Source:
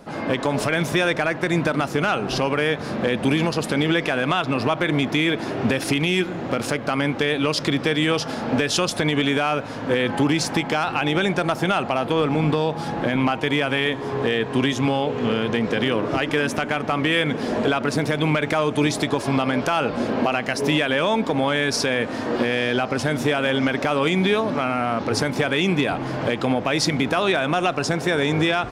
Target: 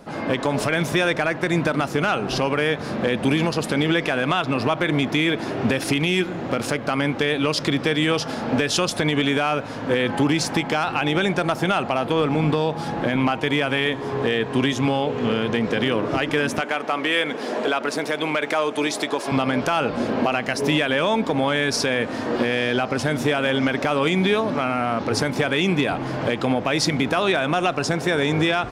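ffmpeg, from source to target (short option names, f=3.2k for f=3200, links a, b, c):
-filter_complex "[0:a]asettb=1/sr,asplit=3[a][b][c];[a]atrim=end=16.614[d];[b]atrim=start=16.61:end=19.32,asetpts=PTS-STARTPTS,afade=t=in:d=0.004:c=qsin,afade=t=out:st=2.706:d=0.004:c=qsin,highpass=340[e];[c]atrim=start=19.316[f];[d][e]acrossfade=d=0.004:c1=hsin:c2=qsin[g];[g][f]acrossfade=d=0.004:c1=qsin:c2=hsin"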